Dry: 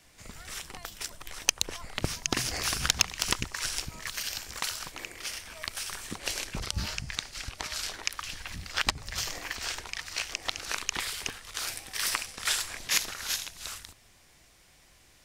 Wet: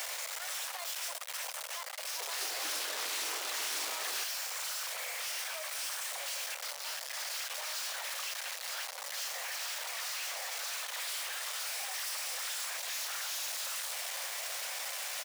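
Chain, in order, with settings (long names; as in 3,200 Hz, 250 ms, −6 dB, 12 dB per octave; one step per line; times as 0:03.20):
sign of each sample alone
Butterworth high-pass 510 Hz 72 dB per octave
brickwall limiter −29.5 dBFS, peak gain reduction 5.5 dB
0:01.96–0:04.24: delay with pitch and tempo change per echo 210 ms, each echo −4 semitones, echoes 3
single-tap delay 81 ms −21 dB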